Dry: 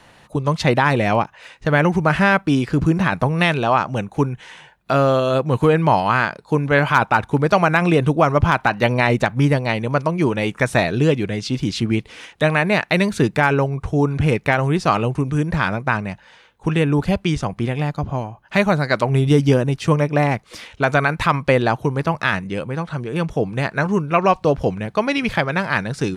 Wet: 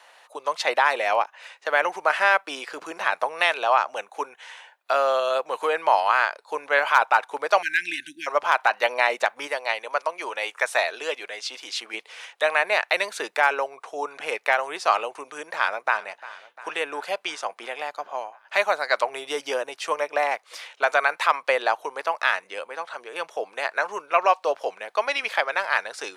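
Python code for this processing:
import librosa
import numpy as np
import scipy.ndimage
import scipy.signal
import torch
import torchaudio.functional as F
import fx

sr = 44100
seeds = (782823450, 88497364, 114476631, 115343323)

y = fx.brickwall_bandstop(x, sr, low_hz=350.0, high_hz=1500.0, at=(7.61, 8.26), fade=0.02)
y = fx.low_shelf(y, sr, hz=280.0, db=-11.0, at=(9.47, 11.94))
y = fx.echo_throw(y, sr, start_s=15.5, length_s=0.57, ms=350, feedback_pct=70, wet_db=-18.0)
y = scipy.signal.sosfilt(scipy.signal.butter(4, 560.0, 'highpass', fs=sr, output='sos'), y)
y = F.gain(torch.from_numpy(y), -2.0).numpy()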